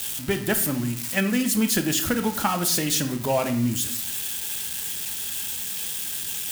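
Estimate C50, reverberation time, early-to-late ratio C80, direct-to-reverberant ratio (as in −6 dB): 11.0 dB, 0.60 s, 14.0 dB, 6.5 dB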